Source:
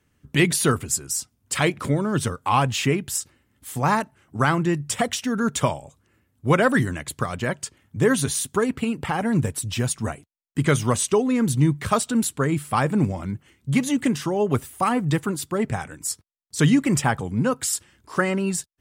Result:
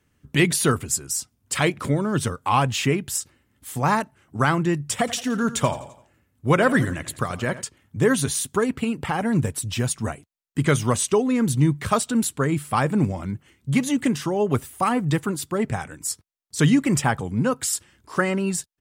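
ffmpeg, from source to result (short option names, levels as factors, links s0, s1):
-filter_complex "[0:a]asplit=3[s0][s1][s2];[s0]afade=t=out:st=5.06:d=0.02[s3];[s1]aecho=1:1:85|170|255|340:0.178|0.0818|0.0376|0.0173,afade=t=in:st=5.06:d=0.02,afade=t=out:st=7.61:d=0.02[s4];[s2]afade=t=in:st=7.61:d=0.02[s5];[s3][s4][s5]amix=inputs=3:normalize=0"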